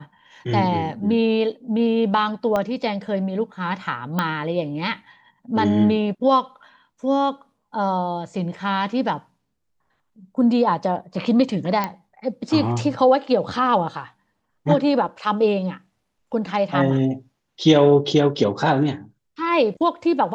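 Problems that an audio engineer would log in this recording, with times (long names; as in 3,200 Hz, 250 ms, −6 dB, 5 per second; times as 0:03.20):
0:02.56: click −11 dBFS
0:04.19: click −9 dBFS
0:11.84: click −10 dBFS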